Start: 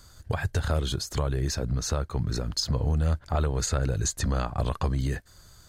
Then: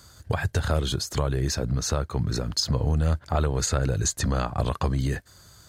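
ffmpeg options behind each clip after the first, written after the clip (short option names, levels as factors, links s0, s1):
-af "highpass=66,volume=1.41"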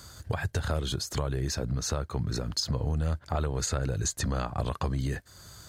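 -af "acompressor=threshold=0.00708:ratio=1.5,volume=1.41"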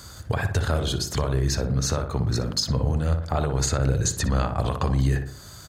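-filter_complex "[0:a]asplit=2[s0][s1];[s1]adelay=60,lowpass=f=1800:p=1,volume=0.501,asplit=2[s2][s3];[s3]adelay=60,lowpass=f=1800:p=1,volume=0.51,asplit=2[s4][s5];[s5]adelay=60,lowpass=f=1800:p=1,volume=0.51,asplit=2[s6][s7];[s7]adelay=60,lowpass=f=1800:p=1,volume=0.51,asplit=2[s8][s9];[s9]adelay=60,lowpass=f=1800:p=1,volume=0.51,asplit=2[s10][s11];[s11]adelay=60,lowpass=f=1800:p=1,volume=0.51[s12];[s0][s2][s4][s6][s8][s10][s12]amix=inputs=7:normalize=0,volume=1.78"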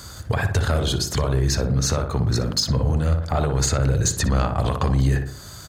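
-af "asoftclip=type=tanh:threshold=0.211,volume=1.58"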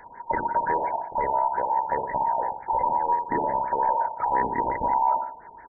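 -af "afftfilt=real='real(if(between(b,1,1008),(2*floor((b-1)/48)+1)*48-b,b),0)':imag='imag(if(between(b,1,1008),(2*floor((b-1)/48)+1)*48-b,b),0)*if(between(b,1,1008),-1,1)':win_size=2048:overlap=0.75,afftfilt=real='re*lt(b*sr/1024,910*pow(2400/910,0.5+0.5*sin(2*PI*5.7*pts/sr)))':imag='im*lt(b*sr/1024,910*pow(2400/910,0.5+0.5*sin(2*PI*5.7*pts/sr)))':win_size=1024:overlap=0.75,volume=0.668"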